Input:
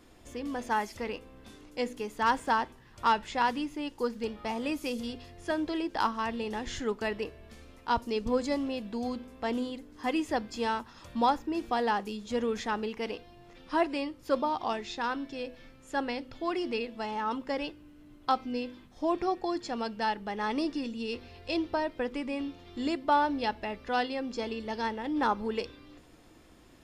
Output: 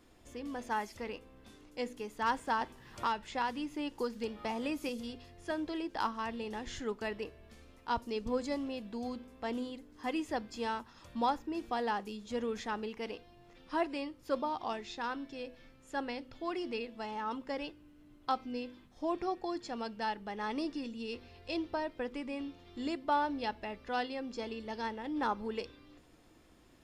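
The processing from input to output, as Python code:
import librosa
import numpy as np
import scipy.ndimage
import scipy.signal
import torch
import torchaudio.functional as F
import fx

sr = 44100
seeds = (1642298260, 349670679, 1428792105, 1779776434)

y = fx.band_squash(x, sr, depth_pct=70, at=(2.61, 4.89))
y = y * librosa.db_to_amplitude(-5.5)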